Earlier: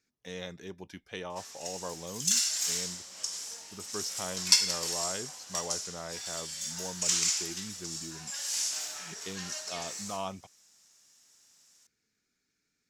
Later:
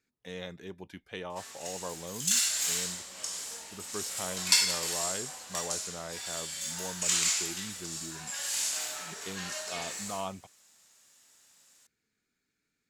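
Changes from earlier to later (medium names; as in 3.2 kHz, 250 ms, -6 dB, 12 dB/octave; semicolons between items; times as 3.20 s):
background: send +8.5 dB; master: add peaking EQ 5.6 kHz -9.5 dB 0.47 oct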